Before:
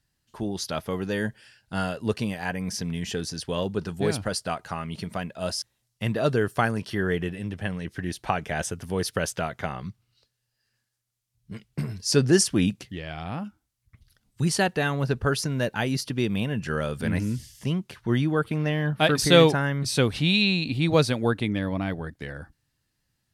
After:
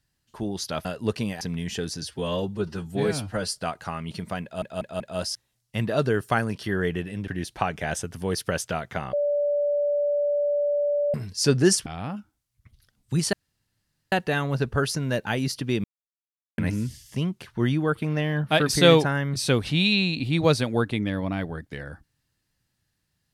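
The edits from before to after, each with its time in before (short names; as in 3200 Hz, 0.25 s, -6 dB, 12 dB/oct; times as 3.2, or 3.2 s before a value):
0.85–1.86 cut
2.42–2.77 cut
3.38–4.42 stretch 1.5×
5.27 stutter 0.19 s, 4 plays
7.55–7.96 cut
9.81–11.82 bleep 581 Hz -20.5 dBFS
12.54–13.14 cut
14.61 insert room tone 0.79 s
16.33–17.07 mute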